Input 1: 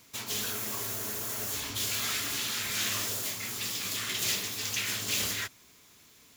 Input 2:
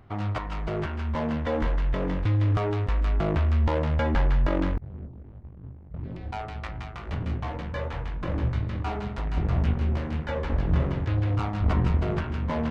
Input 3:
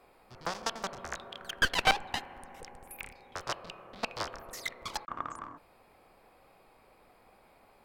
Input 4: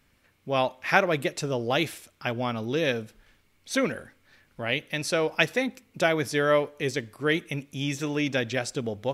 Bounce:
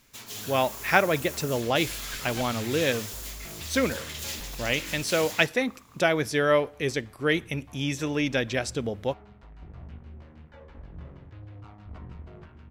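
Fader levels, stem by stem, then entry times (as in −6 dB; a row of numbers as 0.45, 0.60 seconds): −5.5, −19.5, −15.5, +0.5 decibels; 0.00, 0.25, 0.50, 0.00 seconds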